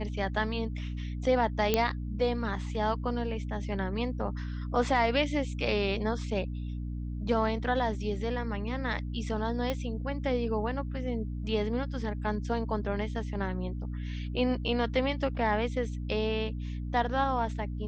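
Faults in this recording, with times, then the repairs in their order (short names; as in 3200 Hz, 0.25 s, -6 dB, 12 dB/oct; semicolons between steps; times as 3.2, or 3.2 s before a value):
hum 60 Hz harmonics 5 -35 dBFS
1.74 pop -10 dBFS
9.7 pop -17 dBFS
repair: de-click; de-hum 60 Hz, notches 5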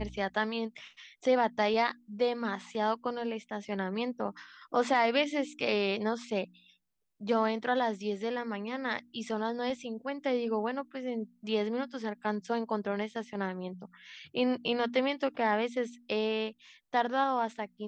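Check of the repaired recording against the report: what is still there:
9.7 pop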